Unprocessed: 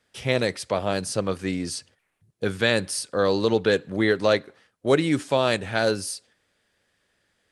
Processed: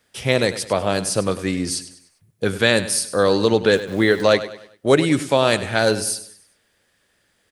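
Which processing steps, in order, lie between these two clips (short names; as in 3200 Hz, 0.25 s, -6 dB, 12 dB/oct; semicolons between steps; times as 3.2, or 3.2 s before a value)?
high shelf 11000 Hz +11 dB; 3.75–4.22 sample gate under -40 dBFS; feedback echo 99 ms, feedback 40%, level -14 dB; gain +4.5 dB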